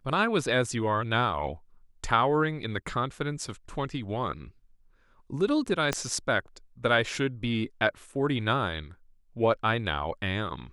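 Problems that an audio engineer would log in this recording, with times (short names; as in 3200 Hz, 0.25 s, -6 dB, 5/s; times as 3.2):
5.93 pop -12 dBFS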